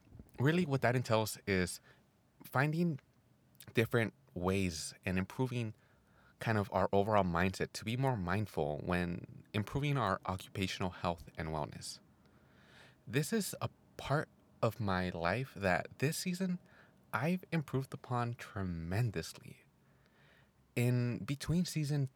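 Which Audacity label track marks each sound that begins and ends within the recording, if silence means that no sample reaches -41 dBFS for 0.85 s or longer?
13.080000	19.510000	sound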